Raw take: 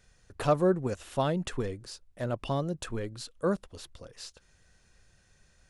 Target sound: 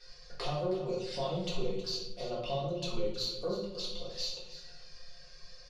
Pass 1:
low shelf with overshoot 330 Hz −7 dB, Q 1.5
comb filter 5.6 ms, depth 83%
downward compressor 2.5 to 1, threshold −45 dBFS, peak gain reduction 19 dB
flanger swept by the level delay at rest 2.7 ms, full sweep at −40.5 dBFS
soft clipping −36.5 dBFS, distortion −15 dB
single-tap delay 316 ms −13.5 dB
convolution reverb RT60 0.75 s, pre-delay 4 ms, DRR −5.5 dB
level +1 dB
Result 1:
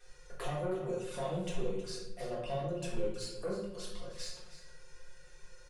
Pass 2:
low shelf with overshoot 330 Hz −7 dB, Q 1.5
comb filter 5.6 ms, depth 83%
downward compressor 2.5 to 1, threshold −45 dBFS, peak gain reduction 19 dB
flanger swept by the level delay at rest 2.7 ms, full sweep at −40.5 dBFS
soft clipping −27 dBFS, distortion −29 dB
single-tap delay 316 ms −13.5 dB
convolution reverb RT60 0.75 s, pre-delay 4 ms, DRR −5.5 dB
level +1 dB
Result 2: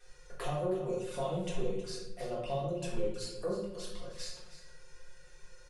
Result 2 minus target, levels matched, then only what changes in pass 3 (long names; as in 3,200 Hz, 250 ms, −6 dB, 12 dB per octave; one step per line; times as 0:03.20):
4,000 Hz band −8.0 dB
add after downward compressor: low-pass with resonance 4,700 Hz, resonance Q 9.8